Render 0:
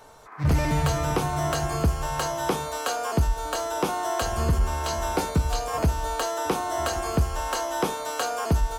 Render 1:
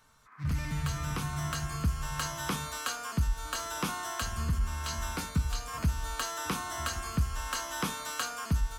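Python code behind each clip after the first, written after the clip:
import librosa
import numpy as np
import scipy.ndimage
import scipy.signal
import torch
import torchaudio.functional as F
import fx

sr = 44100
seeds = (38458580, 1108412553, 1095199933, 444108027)

y = fx.band_shelf(x, sr, hz=530.0, db=-13.0, octaves=1.7)
y = fx.rider(y, sr, range_db=10, speed_s=0.5)
y = y * 10.0 ** (-5.0 / 20.0)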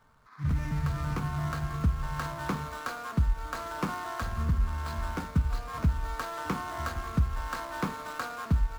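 y = scipy.ndimage.median_filter(x, 15, mode='constant')
y = y * 10.0 ** (3.0 / 20.0)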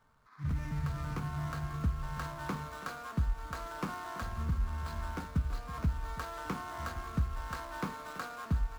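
y = x + 10.0 ** (-15.0 / 20.0) * np.pad(x, (int(329 * sr / 1000.0), 0))[:len(x)]
y = y * 10.0 ** (-5.5 / 20.0)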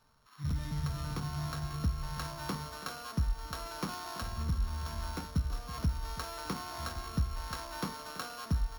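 y = np.r_[np.sort(x[:len(x) // 8 * 8].reshape(-1, 8), axis=1).ravel(), x[len(x) // 8 * 8:]]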